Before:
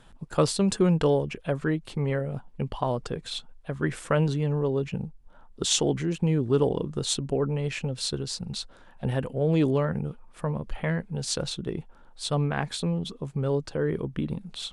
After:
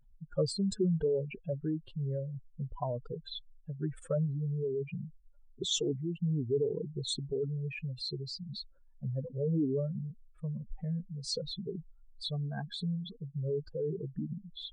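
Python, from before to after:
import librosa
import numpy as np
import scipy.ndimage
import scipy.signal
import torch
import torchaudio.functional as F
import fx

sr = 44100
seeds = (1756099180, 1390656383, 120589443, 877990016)

y = fx.spec_expand(x, sr, power=3.0)
y = fx.comb(y, sr, ms=4.4, depth=0.57, at=(10.8, 12.95), fade=0.02)
y = F.gain(torch.from_numpy(y), -7.0).numpy()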